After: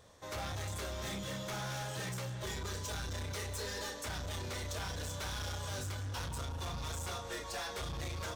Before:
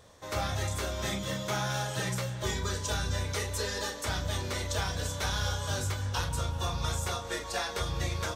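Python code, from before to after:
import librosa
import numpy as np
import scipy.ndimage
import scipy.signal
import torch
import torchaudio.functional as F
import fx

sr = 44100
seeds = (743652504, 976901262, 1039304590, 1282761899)

y = np.clip(x, -10.0 ** (-33.0 / 20.0), 10.0 ** (-33.0 / 20.0))
y = y * librosa.db_to_amplitude(-4.0)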